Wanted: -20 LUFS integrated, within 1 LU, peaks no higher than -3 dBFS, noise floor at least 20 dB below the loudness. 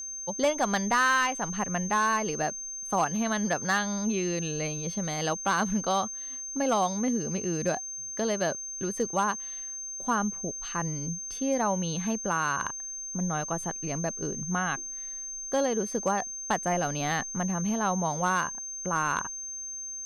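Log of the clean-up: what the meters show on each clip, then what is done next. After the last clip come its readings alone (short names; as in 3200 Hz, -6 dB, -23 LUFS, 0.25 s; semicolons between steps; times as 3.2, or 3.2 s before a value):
clipped 0.3%; flat tops at -18.0 dBFS; steady tone 6300 Hz; tone level -35 dBFS; loudness -29.0 LUFS; peak -18.0 dBFS; loudness target -20.0 LUFS
-> clip repair -18 dBFS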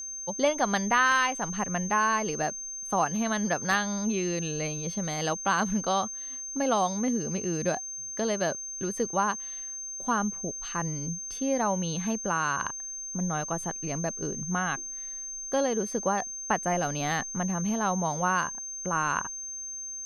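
clipped 0.0%; steady tone 6300 Hz; tone level -35 dBFS
-> notch 6300 Hz, Q 30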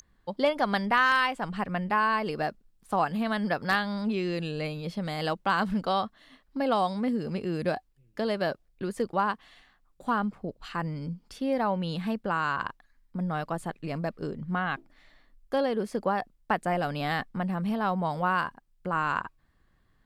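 steady tone none; loudness -29.5 LUFS; peak -11.0 dBFS; loudness target -20.0 LUFS
-> gain +9.5 dB; limiter -3 dBFS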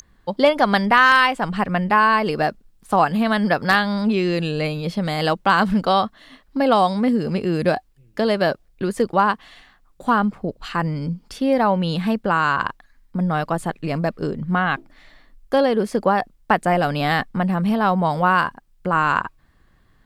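loudness -20.0 LUFS; peak -3.0 dBFS; noise floor -57 dBFS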